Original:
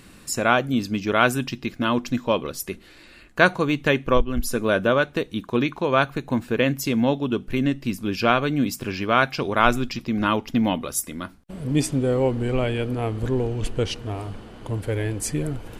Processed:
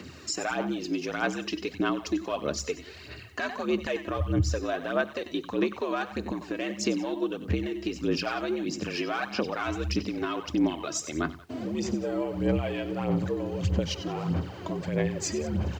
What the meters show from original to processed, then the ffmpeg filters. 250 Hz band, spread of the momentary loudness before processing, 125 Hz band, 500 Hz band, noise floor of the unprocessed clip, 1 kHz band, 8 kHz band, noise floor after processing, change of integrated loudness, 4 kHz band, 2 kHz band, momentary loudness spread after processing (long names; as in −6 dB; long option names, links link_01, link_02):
−5.5 dB, 10 LU, −6.0 dB, −7.0 dB, −49 dBFS, −10.0 dB, −4.5 dB, −45 dBFS, −7.0 dB, −5.5 dB, −9.5 dB, 6 LU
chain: -af "equalizer=frequency=5000:width_type=o:width=0.77:gain=2.5,afreqshift=68,aresample=16000,asoftclip=type=tanh:threshold=-8dB,aresample=44100,acompressor=threshold=-27dB:ratio=6,bandreject=frequency=3400:width=19,aecho=1:1:94|95|182:0.211|0.106|0.106,alimiter=limit=-22dB:level=0:latency=1:release=69,aphaser=in_gain=1:out_gain=1:delay=3.1:decay=0.56:speed=1.6:type=sinusoidal,acrusher=bits=10:mix=0:aa=0.000001"